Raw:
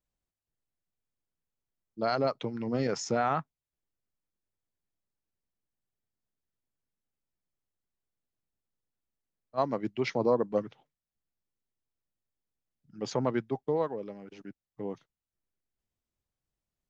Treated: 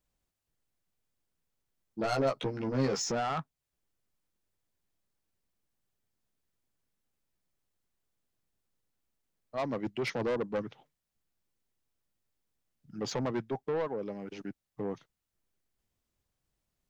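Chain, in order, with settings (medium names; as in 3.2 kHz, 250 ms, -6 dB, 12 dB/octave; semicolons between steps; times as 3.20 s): in parallel at 0 dB: compression, threshold -40 dBFS, peak gain reduction 18 dB; on the sum: saturation -27 dBFS, distortion -8 dB; 1.99–3.12 s: doubling 15 ms -2 dB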